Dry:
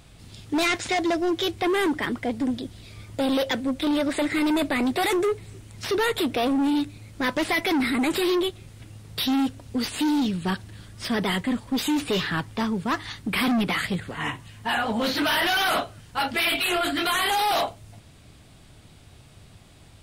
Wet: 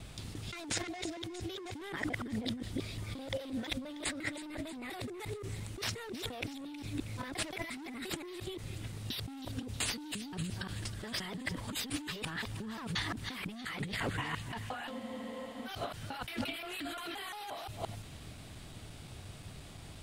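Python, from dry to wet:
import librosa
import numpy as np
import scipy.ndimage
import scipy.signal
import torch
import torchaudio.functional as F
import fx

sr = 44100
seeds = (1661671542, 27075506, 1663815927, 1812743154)

y = fx.local_reverse(x, sr, ms=175.0)
y = fx.over_compress(y, sr, threshold_db=-34.0, ratio=-1.0)
y = fx.echo_wet_highpass(y, sr, ms=318, feedback_pct=63, hz=2100.0, wet_db=-12.5)
y = fx.spec_freeze(y, sr, seeds[0], at_s=14.92, hold_s=0.75)
y = y * librosa.db_to_amplitude(-6.5)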